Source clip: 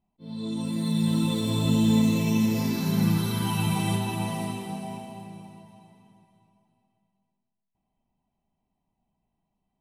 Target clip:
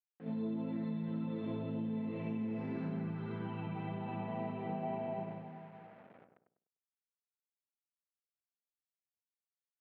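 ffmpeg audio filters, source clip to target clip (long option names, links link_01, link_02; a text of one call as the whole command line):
ffmpeg -i in.wav -filter_complex "[0:a]acontrast=34,acrusher=bits=7:mix=0:aa=0.000001,agate=range=-6dB:threshold=-35dB:ratio=16:detection=peak,asplit=2[link_01][link_02];[link_02]adelay=99,lowpass=frequency=1200:poles=1,volume=-6dB,asplit=2[link_03][link_04];[link_04]adelay=99,lowpass=frequency=1200:poles=1,volume=0.37,asplit=2[link_05][link_06];[link_06]adelay=99,lowpass=frequency=1200:poles=1,volume=0.37,asplit=2[link_07][link_08];[link_08]adelay=99,lowpass=frequency=1200:poles=1,volume=0.37[link_09];[link_01][link_03][link_05][link_07][link_09]amix=inputs=5:normalize=0,acompressor=threshold=-32dB:ratio=10,highpass=170,equalizer=frequency=470:width_type=q:width=4:gain=4,equalizer=frequency=710:width_type=q:width=4:gain=3,equalizer=frequency=1000:width_type=q:width=4:gain=-5,lowpass=frequency=2200:width=0.5412,lowpass=frequency=2200:width=1.3066,volume=-1.5dB" out.wav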